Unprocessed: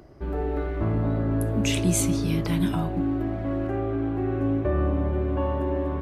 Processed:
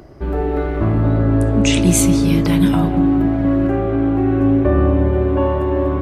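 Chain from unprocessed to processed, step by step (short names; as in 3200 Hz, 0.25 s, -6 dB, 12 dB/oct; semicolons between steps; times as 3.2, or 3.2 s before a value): 1.09–1.82 steep low-pass 9000 Hz 36 dB/oct; on a send: darkening echo 0.202 s, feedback 77%, low-pass 2000 Hz, level -11 dB; on the sum: gain +8.5 dB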